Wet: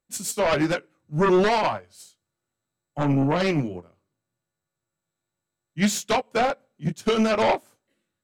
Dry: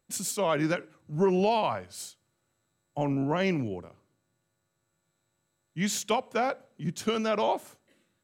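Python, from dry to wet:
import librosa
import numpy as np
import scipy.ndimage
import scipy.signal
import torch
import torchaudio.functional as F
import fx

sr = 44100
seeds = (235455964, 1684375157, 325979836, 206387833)

y = fx.chorus_voices(x, sr, voices=2, hz=0.65, base_ms=18, depth_ms=4.9, mix_pct=30)
y = fx.fold_sine(y, sr, drive_db=9, ceiling_db=-15.5)
y = fx.upward_expand(y, sr, threshold_db=-30.0, expansion=2.5)
y = F.gain(torch.from_numpy(y), 1.5).numpy()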